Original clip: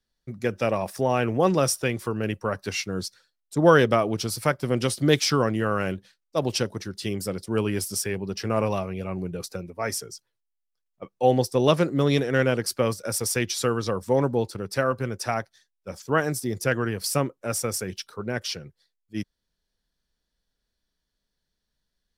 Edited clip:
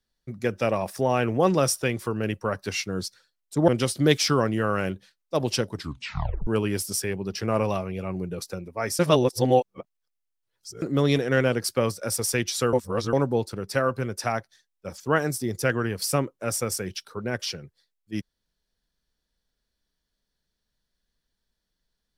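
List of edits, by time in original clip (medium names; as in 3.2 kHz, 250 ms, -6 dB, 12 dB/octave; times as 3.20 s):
3.68–4.70 s: delete
6.74 s: tape stop 0.75 s
10.01–11.84 s: reverse
13.75–14.15 s: reverse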